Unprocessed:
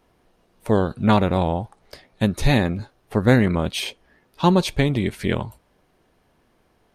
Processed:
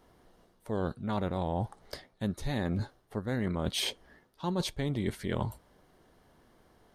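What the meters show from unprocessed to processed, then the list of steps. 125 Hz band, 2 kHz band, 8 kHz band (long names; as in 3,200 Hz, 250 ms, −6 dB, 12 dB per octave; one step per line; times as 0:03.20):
−12.5 dB, −14.5 dB, −6.0 dB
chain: parametric band 2,500 Hz −9 dB 0.25 octaves
reversed playback
downward compressor 16 to 1, threshold −28 dBFS, peak gain reduction 19 dB
reversed playback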